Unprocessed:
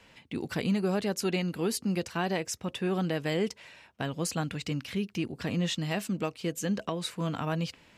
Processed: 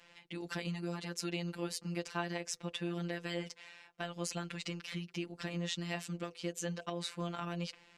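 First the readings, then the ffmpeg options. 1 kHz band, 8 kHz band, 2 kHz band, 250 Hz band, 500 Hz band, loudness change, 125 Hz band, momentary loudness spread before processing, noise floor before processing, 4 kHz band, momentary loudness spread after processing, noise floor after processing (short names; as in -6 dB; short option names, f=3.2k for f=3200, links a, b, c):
-7.5 dB, -6.0 dB, -5.5 dB, -9.5 dB, -9.5 dB, -8.0 dB, -8.5 dB, 5 LU, -59 dBFS, -5.0 dB, 4 LU, -64 dBFS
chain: -af "acompressor=threshold=-29dB:ratio=6,lowpass=8.6k,lowshelf=f=360:g=-8,afftfilt=real='hypot(re,im)*cos(PI*b)':imag='0':win_size=1024:overlap=0.75,bandreject=f=124.8:t=h:w=4,bandreject=f=249.6:t=h:w=4,bandreject=f=374.4:t=h:w=4,bandreject=f=499.2:t=h:w=4,bandreject=f=624:t=h:w=4,bandreject=f=748.8:t=h:w=4,volume=1dB"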